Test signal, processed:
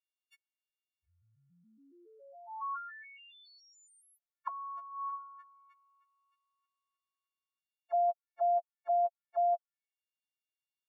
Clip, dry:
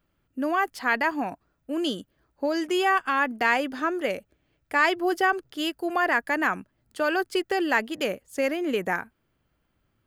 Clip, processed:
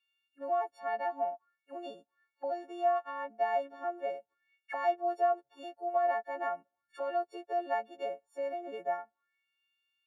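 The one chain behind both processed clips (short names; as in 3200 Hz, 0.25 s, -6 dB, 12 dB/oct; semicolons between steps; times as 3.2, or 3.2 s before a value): frequency quantiser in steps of 4 st; auto-wah 680–2900 Hz, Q 6.5, down, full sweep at -26.5 dBFS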